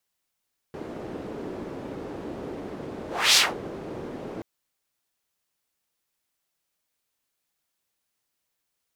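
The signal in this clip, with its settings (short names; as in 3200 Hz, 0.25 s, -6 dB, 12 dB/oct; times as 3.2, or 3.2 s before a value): whoosh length 3.68 s, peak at 2.62, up 0.30 s, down 0.21 s, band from 350 Hz, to 4600 Hz, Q 1.5, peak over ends 19 dB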